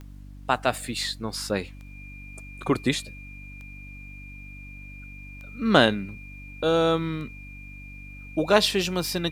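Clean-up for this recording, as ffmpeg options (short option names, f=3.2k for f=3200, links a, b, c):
-af "adeclick=t=4,bandreject=f=48.6:t=h:w=4,bandreject=f=97.2:t=h:w=4,bandreject=f=145.8:t=h:w=4,bandreject=f=194.4:t=h:w=4,bandreject=f=243:t=h:w=4,bandreject=f=291.6:t=h:w=4,bandreject=f=2.4k:w=30,agate=range=-21dB:threshold=-34dB"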